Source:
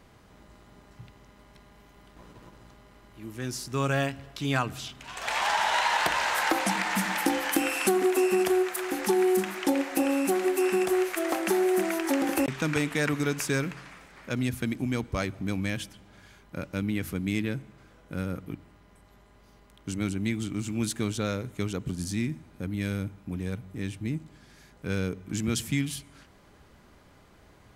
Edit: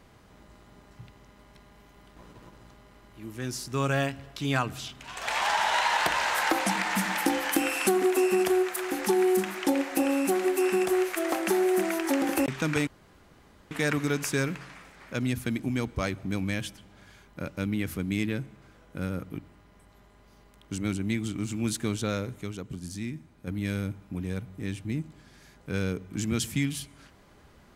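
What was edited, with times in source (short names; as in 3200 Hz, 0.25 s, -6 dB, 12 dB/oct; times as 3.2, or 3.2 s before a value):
12.87 insert room tone 0.84 s
21.59–22.63 gain -5.5 dB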